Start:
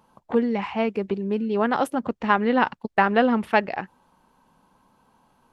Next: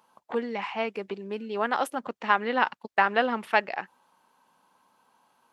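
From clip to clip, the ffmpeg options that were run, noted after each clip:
-af "highpass=f=860:p=1"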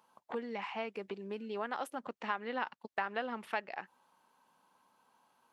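-af "acompressor=threshold=-33dB:ratio=2,volume=-5dB"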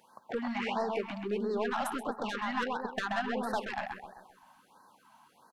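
-filter_complex "[0:a]asoftclip=type=tanh:threshold=-34dB,asplit=2[a][b];[b]adelay=130,lowpass=f=2.9k:p=1,volume=-3dB,asplit=2[c][d];[d]adelay=130,lowpass=f=2.9k:p=1,volume=0.49,asplit=2[e][f];[f]adelay=130,lowpass=f=2.9k:p=1,volume=0.49,asplit=2[g][h];[h]adelay=130,lowpass=f=2.9k:p=1,volume=0.49,asplit=2[i][j];[j]adelay=130,lowpass=f=2.9k:p=1,volume=0.49,asplit=2[k][l];[l]adelay=130,lowpass=f=2.9k:p=1,volume=0.49[m];[a][c][e][g][i][k][m]amix=inputs=7:normalize=0,afftfilt=real='re*(1-between(b*sr/1024,380*pow(2800/380,0.5+0.5*sin(2*PI*1.5*pts/sr))/1.41,380*pow(2800/380,0.5+0.5*sin(2*PI*1.5*pts/sr))*1.41))':imag='im*(1-between(b*sr/1024,380*pow(2800/380,0.5+0.5*sin(2*PI*1.5*pts/sr))/1.41,380*pow(2800/380,0.5+0.5*sin(2*PI*1.5*pts/sr))*1.41))':win_size=1024:overlap=0.75,volume=8.5dB"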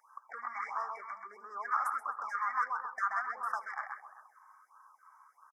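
-af "highpass=f=1.2k:t=q:w=9.5,aecho=1:1:77|154|231:0.075|0.0337|0.0152,afftfilt=real='re*(1-between(b*sr/4096,2300,4900))':imag='im*(1-between(b*sr/4096,2300,4900))':win_size=4096:overlap=0.75,volume=-7.5dB"

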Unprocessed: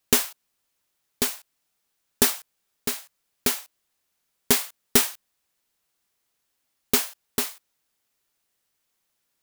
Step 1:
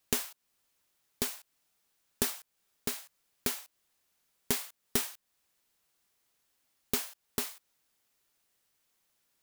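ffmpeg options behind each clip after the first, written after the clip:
-af "acompressor=threshold=-36dB:ratio=2"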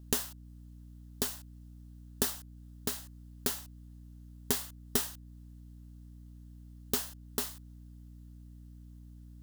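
-af "aeval=exprs='val(0)+0.00355*(sin(2*PI*60*n/s)+sin(2*PI*2*60*n/s)/2+sin(2*PI*3*60*n/s)/3+sin(2*PI*4*60*n/s)/4+sin(2*PI*5*60*n/s)/5)':c=same,equalizer=f=2.3k:w=5.1:g=-10.5"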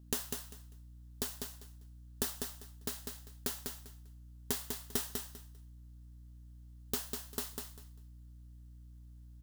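-af "aecho=1:1:198|396|594:0.562|0.112|0.0225,volume=-5dB"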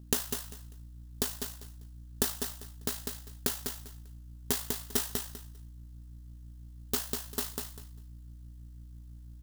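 -af "tremolo=f=54:d=0.462,volume=7.5dB"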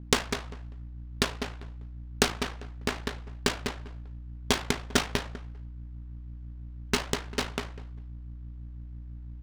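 -af "acrusher=samples=3:mix=1:aa=0.000001,adynamicsmooth=sensitivity=5:basefreq=1.7k,volume=6.5dB"

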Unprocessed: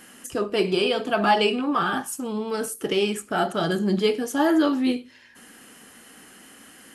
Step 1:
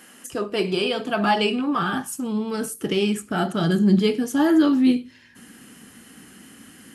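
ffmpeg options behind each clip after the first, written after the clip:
-af "highpass=f=140:p=1,asubboost=boost=5.5:cutoff=240"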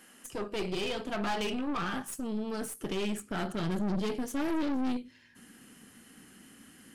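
-af "aeval=exprs='(tanh(15.8*val(0)+0.65)-tanh(0.65))/15.8':c=same,volume=-5dB"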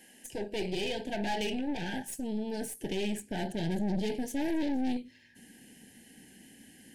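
-af "asuperstop=centerf=1200:order=12:qfactor=1.9"

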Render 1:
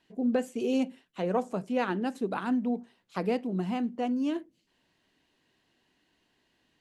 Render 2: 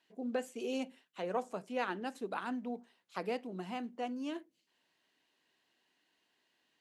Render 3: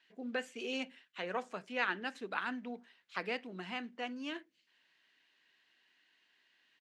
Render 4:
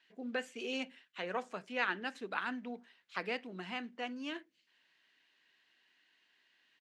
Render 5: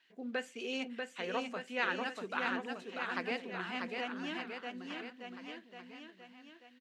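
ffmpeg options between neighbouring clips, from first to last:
-af "highpass=f=580:p=1,volume=-3.5dB"
-af "firequalizer=gain_entry='entry(750,0);entry(1700,12);entry(11000,-7)':delay=0.05:min_phase=1,volume=-3.5dB"
-af anull
-af "aecho=1:1:640|1216|1734|2201|2621:0.631|0.398|0.251|0.158|0.1"

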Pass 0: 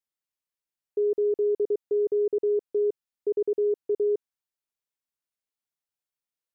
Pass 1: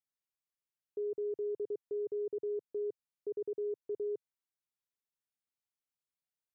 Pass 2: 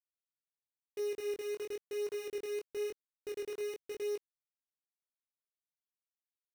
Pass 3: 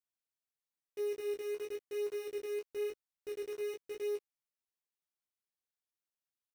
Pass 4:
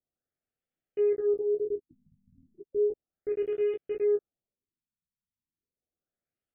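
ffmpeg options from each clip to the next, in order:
-af "equalizer=f=130:w=1.5:g=5,alimiter=level_in=1dB:limit=-24dB:level=0:latency=1:release=114,volume=-1dB,volume=-7dB"
-af "acrusher=bits=8:dc=4:mix=0:aa=0.000001,flanger=delay=19.5:depth=4.2:speed=0.97,volume=1dB"
-filter_complex "[0:a]asplit=2[a][b];[b]adelay=12,volume=-5dB[c];[a][c]amix=inputs=2:normalize=0,volume=-3.5dB"
-af "asuperstop=centerf=980:order=4:qfactor=2.1,tiltshelf=f=1.5k:g=7.5,afftfilt=real='re*lt(b*sr/1024,240*pow(3700/240,0.5+0.5*sin(2*PI*0.34*pts/sr)))':imag='im*lt(b*sr/1024,240*pow(3700/240,0.5+0.5*sin(2*PI*0.34*pts/sr)))':win_size=1024:overlap=0.75,volume=4.5dB"

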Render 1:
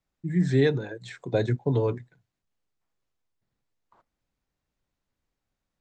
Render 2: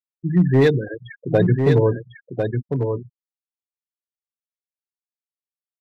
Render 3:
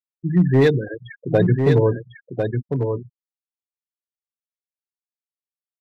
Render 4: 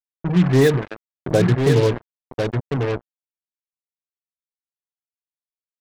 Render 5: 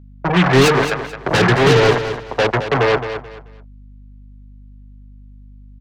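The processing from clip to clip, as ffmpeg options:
-af "afftfilt=real='re*gte(hypot(re,im),0.0398)':imag='im*gte(hypot(re,im),0.0398)':win_size=1024:overlap=0.75,asoftclip=type=hard:threshold=-16dB,aecho=1:1:1049:0.531,volume=7.5dB"
-af anull
-af "acrusher=bits=3:mix=0:aa=0.5"
-filter_complex "[0:a]acrossover=split=280|480|3700[a][b][c][d];[c]aeval=exprs='0.251*sin(PI/2*4.47*val(0)/0.251)':c=same[e];[a][b][e][d]amix=inputs=4:normalize=0,aeval=exprs='val(0)+0.01*(sin(2*PI*50*n/s)+sin(2*PI*2*50*n/s)/2+sin(2*PI*3*50*n/s)/3+sin(2*PI*4*50*n/s)/4+sin(2*PI*5*50*n/s)/5)':c=same,aecho=1:1:217|434|651:0.316|0.0822|0.0214"

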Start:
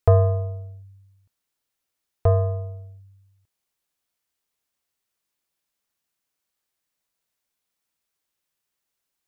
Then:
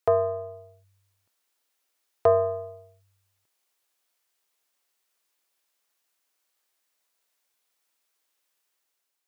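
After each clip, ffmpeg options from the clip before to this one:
-af "highpass=360,dynaudnorm=f=170:g=7:m=5dB"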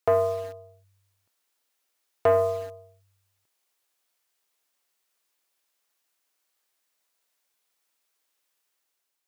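-filter_complex "[0:a]asplit=2[a][b];[b]acrusher=bits=5:mix=0:aa=0.000001,volume=-11dB[c];[a][c]amix=inputs=2:normalize=0,asoftclip=type=tanh:threshold=-13dB"

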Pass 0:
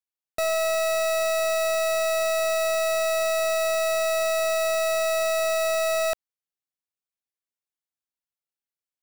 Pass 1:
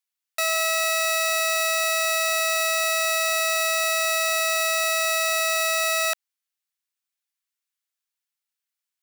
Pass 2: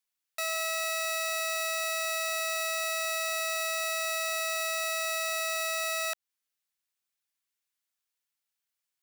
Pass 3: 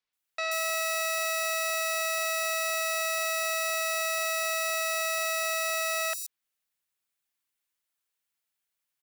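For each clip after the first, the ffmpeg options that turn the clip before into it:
-af "highpass=1.3k,volume=7dB"
-af "alimiter=limit=-20dB:level=0:latency=1:release=213"
-filter_complex "[0:a]acrossover=split=5400[a][b];[b]adelay=130[c];[a][c]amix=inputs=2:normalize=0,volume=2.5dB"

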